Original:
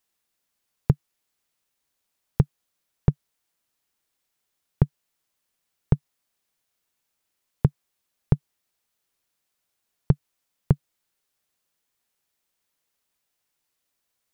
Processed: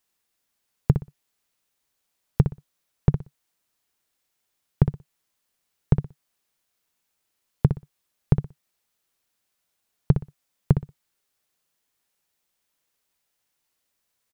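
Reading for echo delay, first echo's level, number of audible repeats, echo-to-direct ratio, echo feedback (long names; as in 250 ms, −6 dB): 61 ms, −8.5 dB, 2, −8.5 dB, 21%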